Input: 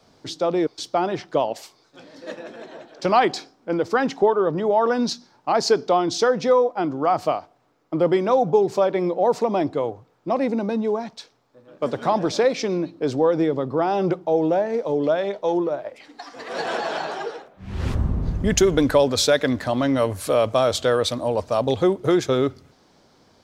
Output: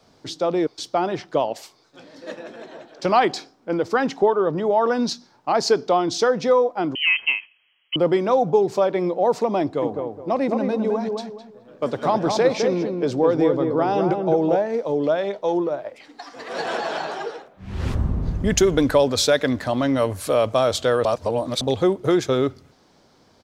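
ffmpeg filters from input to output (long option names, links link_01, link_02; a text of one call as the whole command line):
ffmpeg -i in.wav -filter_complex "[0:a]asettb=1/sr,asplit=3[link_01][link_02][link_03];[link_01]atrim=end=6.954[link_04];[link_02]atrim=start=6.95:end=7.96,asetpts=PTS-STARTPTS,afade=type=in:duration=0.004:curve=qsin,afade=type=out:start_time=1.006:duration=0.004:curve=qsin,lowpass=frequency=2800:width_type=q:width=0.5098,lowpass=frequency=2800:width_type=q:width=0.6013,lowpass=frequency=2800:width_type=q:width=0.9,lowpass=frequency=2800:width_type=q:width=2.563,afreqshift=-3300[link_05];[link_03]atrim=start=7.956[link_06];[link_04][link_05]acrossfade=duration=0.004:curve1=hsin:curve2=qsin[link_07];[link_07][link_06]acrossfade=duration=0.004:curve1=qsin:curve2=hsin,asplit=3[link_08][link_09][link_10];[link_08]afade=type=out:start_time=9.81:duration=0.02[link_11];[link_09]asplit=2[link_12][link_13];[link_13]adelay=210,lowpass=frequency=1200:poles=1,volume=-3.5dB,asplit=2[link_14][link_15];[link_15]adelay=210,lowpass=frequency=1200:poles=1,volume=0.31,asplit=2[link_16][link_17];[link_17]adelay=210,lowpass=frequency=1200:poles=1,volume=0.31,asplit=2[link_18][link_19];[link_19]adelay=210,lowpass=frequency=1200:poles=1,volume=0.31[link_20];[link_12][link_14][link_16][link_18][link_20]amix=inputs=5:normalize=0,afade=type=in:start_time=9.81:duration=0.02,afade=type=out:start_time=14.55:duration=0.02[link_21];[link_10]afade=type=in:start_time=14.55:duration=0.02[link_22];[link_11][link_21][link_22]amix=inputs=3:normalize=0,asplit=3[link_23][link_24][link_25];[link_23]atrim=end=21.052[link_26];[link_24]atrim=start=21.048:end=21.612,asetpts=PTS-STARTPTS,areverse[link_27];[link_25]atrim=start=21.608[link_28];[link_26][link_27]acrossfade=duration=0.004:curve1=hsin:curve2=hsin[link_29];[link_29][link_28]acrossfade=duration=0.004:curve1=hsin:curve2=hsin" out.wav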